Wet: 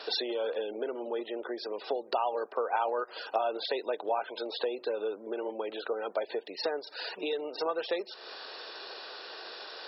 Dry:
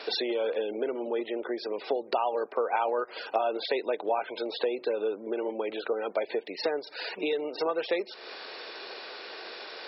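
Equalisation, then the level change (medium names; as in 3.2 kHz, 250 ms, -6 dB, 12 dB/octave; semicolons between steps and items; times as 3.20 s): bass shelf 370 Hz -9 dB; peaking EQ 2.2 kHz -11.5 dB 0.31 oct; 0.0 dB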